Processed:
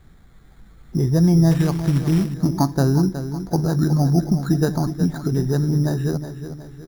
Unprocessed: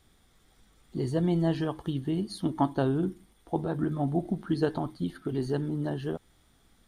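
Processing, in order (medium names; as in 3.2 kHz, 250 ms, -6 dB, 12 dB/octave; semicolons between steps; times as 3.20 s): in parallel at +0.5 dB: compression 6:1, threshold -34 dBFS, peak gain reduction 13.5 dB; on the sum: fifteen-band graphic EQ 160 Hz +7 dB, 1.6 kHz +4 dB, 4 kHz -5 dB; careless resampling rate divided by 8×, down filtered, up hold; on a send: feedback delay 367 ms, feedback 46%, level -10.5 dB; 1.51–2.34 s: on the sum: short-mantissa float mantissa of 2-bit; bass shelf 110 Hz +9.5 dB; trim +1.5 dB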